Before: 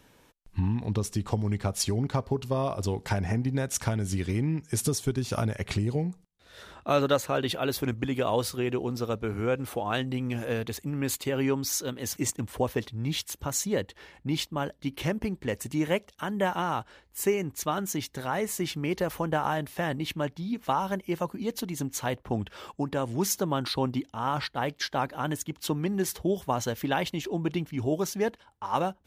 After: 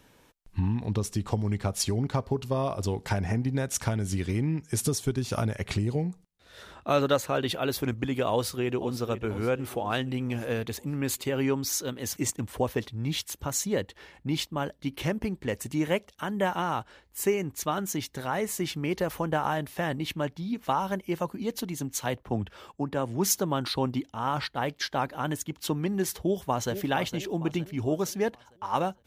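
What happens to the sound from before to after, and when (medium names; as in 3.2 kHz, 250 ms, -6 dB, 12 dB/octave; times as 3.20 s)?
8.32–8.94 s: echo throw 490 ms, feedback 55%, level -13 dB
21.77–23.35 s: three bands expanded up and down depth 40%
26.15–26.72 s: echo throw 460 ms, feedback 45%, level -10.5 dB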